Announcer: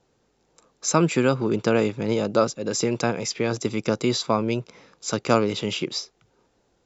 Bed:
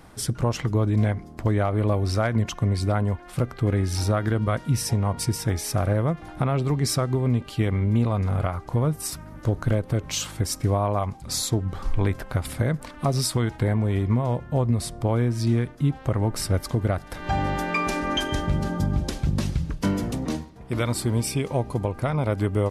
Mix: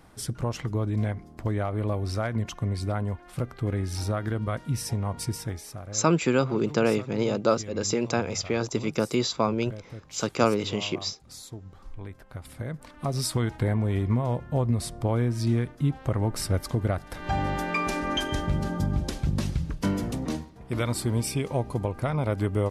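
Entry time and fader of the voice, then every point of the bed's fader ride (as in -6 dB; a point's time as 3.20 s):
5.10 s, -2.5 dB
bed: 5.38 s -5.5 dB
5.83 s -17 dB
12.11 s -17 dB
13.36 s -2.5 dB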